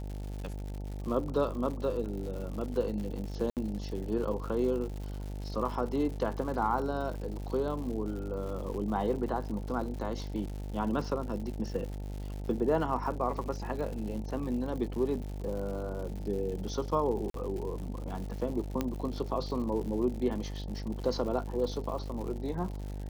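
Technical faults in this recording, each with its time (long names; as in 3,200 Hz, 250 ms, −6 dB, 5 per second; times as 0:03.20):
mains buzz 50 Hz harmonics 18 −38 dBFS
surface crackle 160 per second −39 dBFS
0:03.50–0:03.57: drop-out 68 ms
0:08.74: drop-out 2.5 ms
0:17.30–0:17.34: drop-out 43 ms
0:18.81: click −17 dBFS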